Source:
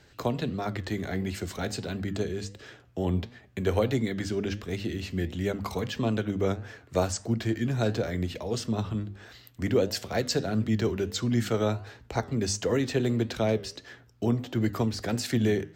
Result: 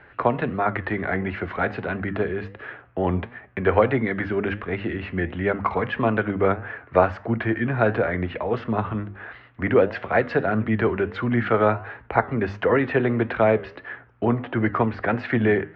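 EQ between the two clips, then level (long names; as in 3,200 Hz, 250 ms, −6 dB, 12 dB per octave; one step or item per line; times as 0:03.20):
low-pass filter 2,400 Hz 24 dB per octave
parametric band 1,300 Hz +12.5 dB 2.7 octaves
+1.5 dB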